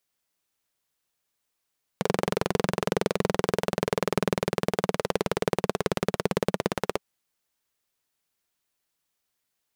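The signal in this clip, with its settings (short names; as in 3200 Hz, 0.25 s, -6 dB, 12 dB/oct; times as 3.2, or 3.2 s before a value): single-cylinder engine model, changing speed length 5.00 s, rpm 2700, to 2000, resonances 190/420 Hz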